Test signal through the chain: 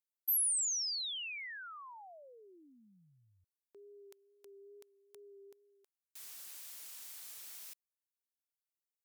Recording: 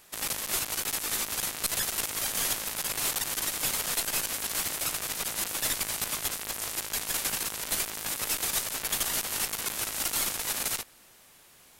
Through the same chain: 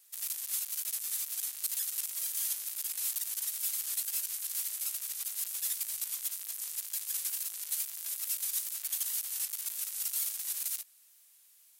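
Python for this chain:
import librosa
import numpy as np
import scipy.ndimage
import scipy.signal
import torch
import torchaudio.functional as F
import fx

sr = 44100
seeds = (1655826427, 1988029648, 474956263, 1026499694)

y = fx.wow_flutter(x, sr, seeds[0], rate_hz=2.1, depth_cents=28.0)
y = np.diff(y, prepend=0.0)
y = y * librosa.db_to_amplitude(-5.5)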